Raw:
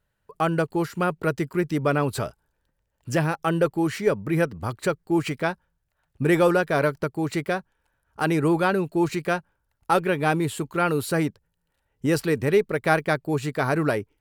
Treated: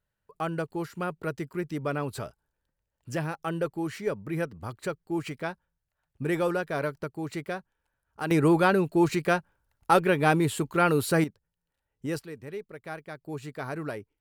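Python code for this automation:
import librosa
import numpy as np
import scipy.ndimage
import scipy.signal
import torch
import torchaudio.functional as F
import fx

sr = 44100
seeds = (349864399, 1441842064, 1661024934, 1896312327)

y = fx.gain(x, sr, db=fx.steps((0.0, -8.0), (8.31, 0.0), (11.24, -9.5), (12.19, -18.0), (13.21, -11.5)))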